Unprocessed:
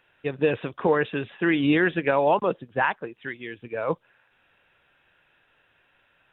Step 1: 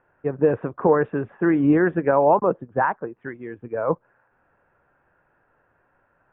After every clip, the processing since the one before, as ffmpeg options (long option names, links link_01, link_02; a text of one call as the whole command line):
ffmpeg -i in.wav -af "lowpass=frequency=1400:width=0.5412,lowpass=frequency=1400:width=1.3066,volume=4dB" out.wav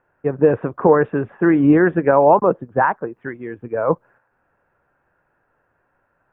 ffmpeg -i in.wav -af "agate=range=-6dB:threshold=-52dB:ratio=16:detection=peak,volume=4.5dB" out.wav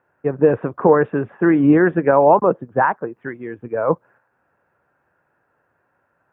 ffmpeg -i in.wav -af "highpass=82" out.wav